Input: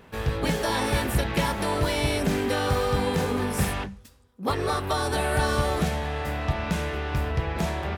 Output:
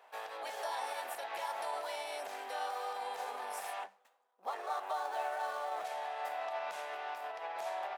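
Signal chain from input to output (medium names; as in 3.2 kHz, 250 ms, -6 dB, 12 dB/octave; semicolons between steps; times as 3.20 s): 3.79–5.85 s: median filter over 9 samples; peak limiter -21.5 dBFS, peak gain reduction 7.5 dB; ladder high-pass 640 Hz, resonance 60%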